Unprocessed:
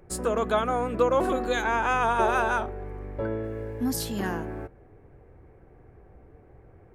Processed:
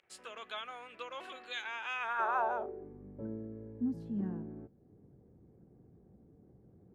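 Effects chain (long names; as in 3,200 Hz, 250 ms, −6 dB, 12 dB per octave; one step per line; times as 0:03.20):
noise gate with hold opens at −46 dBFS
upward compression, threshold −40 dBFS
band-pass filter sweep 2,900 Hz → 200 Hz, 0:01.93–0:02.99
level −2.5 dB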